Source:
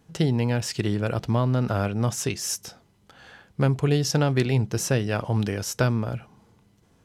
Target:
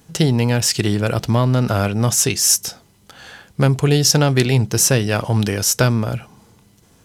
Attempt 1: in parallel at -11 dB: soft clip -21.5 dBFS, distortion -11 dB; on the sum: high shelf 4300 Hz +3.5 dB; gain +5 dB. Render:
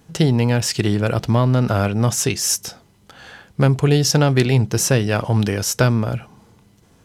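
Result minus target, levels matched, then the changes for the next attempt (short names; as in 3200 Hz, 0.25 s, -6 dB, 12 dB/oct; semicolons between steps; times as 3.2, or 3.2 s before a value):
8000 Hz band -3.5 dB
change: high shelf 4300 Hz +10.5 dB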